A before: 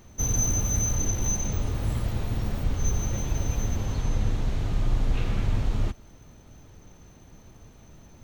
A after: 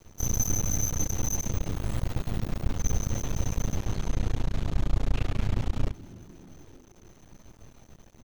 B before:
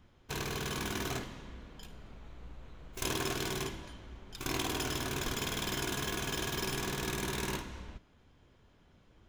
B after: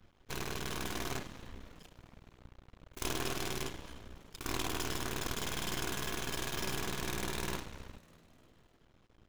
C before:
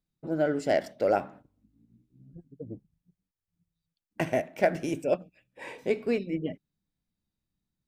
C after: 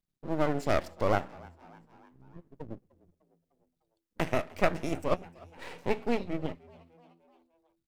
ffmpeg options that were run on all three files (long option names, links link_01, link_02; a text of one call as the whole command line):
ffmpeg -i in.wav -filter_complex "[0:a]aeval=exprs='max(val(0),0)':channel_layout=same,asplit=5[link_01][link_02][link_03][link_04][link_05];[link_02]adelay=301,afreqshift=83,volume=-23.5dB[link_06];[link_03]adelay=602,afreqshift=166,volume=-28.4dB[link_07];[link_04]adelay=903,afreqshift=249,volume=-33.3dB[link_08];[link_05]adelay=1204,afreqshift=332,volume=-38.1dB[link_09];[link_01][link_06][link_07][link_08][link_09]amix=inputs=5:normalize=0,volume=1.5dB" out.wav